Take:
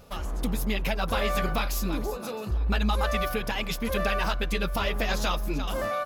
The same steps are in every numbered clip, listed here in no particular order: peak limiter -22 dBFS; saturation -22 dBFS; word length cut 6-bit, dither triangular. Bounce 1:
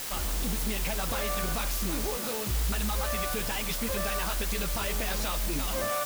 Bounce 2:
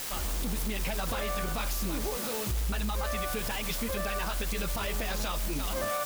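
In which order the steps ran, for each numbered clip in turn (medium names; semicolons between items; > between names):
peak limiter > saturation > word length cut; word length cut > peak limiter > saturation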